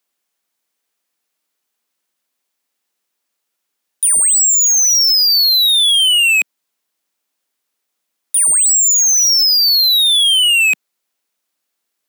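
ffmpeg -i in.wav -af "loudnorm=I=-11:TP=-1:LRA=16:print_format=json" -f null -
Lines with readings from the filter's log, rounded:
"input_i" : "-9.1",
"input_tp" : "-7.7",
"input_lra" : "3.5",
"input_thresh" : "-19.3",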